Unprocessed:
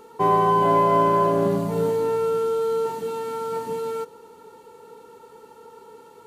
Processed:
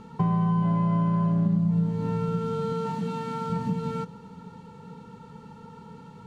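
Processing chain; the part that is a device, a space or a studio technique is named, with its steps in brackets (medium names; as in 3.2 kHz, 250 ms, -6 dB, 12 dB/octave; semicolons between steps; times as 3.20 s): 2.72–3.50 s: high-pass 250 Hz 6 dB/octave; jukebox (low-pass 5.4 kHz 12 dB/octave; resonant low shelf 260 Hz +13 dB, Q 3; compression 4:1, threshold -24 dBFS, peak gain reduction 16.5 dB)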